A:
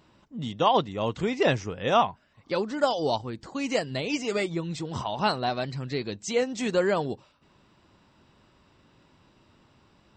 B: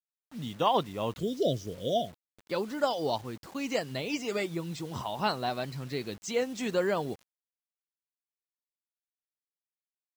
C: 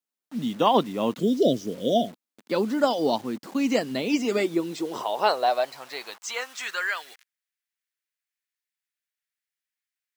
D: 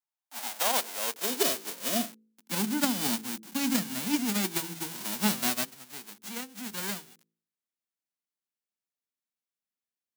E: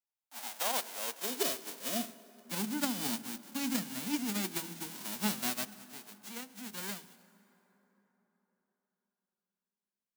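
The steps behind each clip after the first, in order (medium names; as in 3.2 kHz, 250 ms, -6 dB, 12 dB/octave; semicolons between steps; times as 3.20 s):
spectral selection erased 1.19–2.39 s, 720–2900 Hz; high-pass 56 Hz 6 dB/octave; bit crusher 8-bit; trim -4 dB
high-pass sweep 230 Hz -> 1.8 kHz, 4.23–7.02 s; trim +4.5 dB
formants flattened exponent 0.1; de-hum 54.99 Hz, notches 9; high-pass sweep 830 Hz -> 200 Hz, 0.05–2.79 s; trim -7 dB
reverberation RT60 4.3 s, pre-delay 77 ms, DRR 17.5 dB; trim -6 dB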